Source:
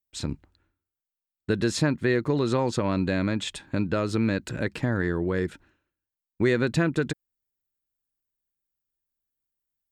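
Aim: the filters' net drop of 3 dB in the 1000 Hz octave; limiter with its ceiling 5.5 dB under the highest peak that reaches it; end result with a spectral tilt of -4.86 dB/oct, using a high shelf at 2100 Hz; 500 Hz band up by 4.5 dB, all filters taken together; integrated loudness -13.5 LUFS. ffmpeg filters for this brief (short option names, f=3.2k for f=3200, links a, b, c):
-af "equalizer=f=500:t=o:g=7,equalizer=f=1k:t=o:g=-8.5,highshelf=f=2.1k:g=9,volume=11.5dB,alimiter=limit=-1.5dB:level=0:latency=1"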